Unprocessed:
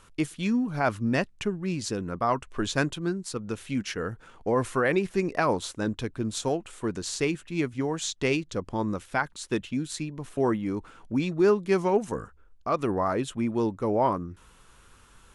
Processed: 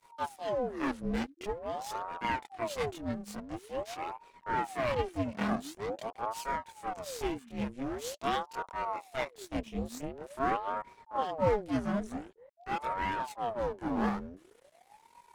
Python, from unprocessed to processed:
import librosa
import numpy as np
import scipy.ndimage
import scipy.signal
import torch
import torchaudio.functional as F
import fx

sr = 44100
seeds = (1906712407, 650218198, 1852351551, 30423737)

y = np.maximum(x, 0.0)
y = fx.chorus_voices(y, sr, voices=2, hz=0.24, base_ms=25, depth_ms=1.8, mix_pct=60)
y = fx.ring_lfo(y, sr, carrier_hz=580.0, swing_pct=65, hz=0.46)